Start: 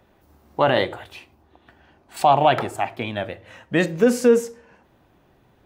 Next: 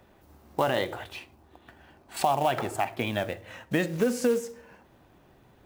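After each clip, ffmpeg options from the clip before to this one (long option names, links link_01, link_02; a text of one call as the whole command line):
ffmpeg -i in.wav -af "acompressor=threshold=-24dB:ratio=3,acrusher=bits=5:mode=log:mix=0:aa=0.000001" out.wav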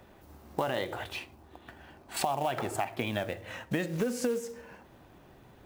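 ffmpeg -i in.wav -af "acompressor=threshold=-33dB:ratio=2.5,volume=2.5dB" out.wav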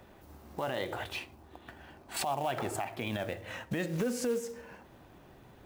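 ffmpeg -i in.wav -af "alimiter=limit=-23dB:level=0:latency=1:release=43" out.wav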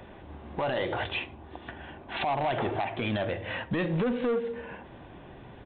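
ffmpeg -i in.wav -af "bandreject=frequency=1300:width=13,aresample=8000,asoftclip=type=tanh:threshold=-31.5dB,aresample=44100,volume=8.5dB" out.wav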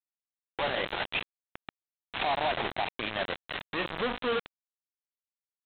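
ffmpeg -i in.wav -af "highpass=frequency=510:poles=1,aresample=8000,acrusher=bits=4:mix=0:aa=0.000001,aresample=44100" out.wav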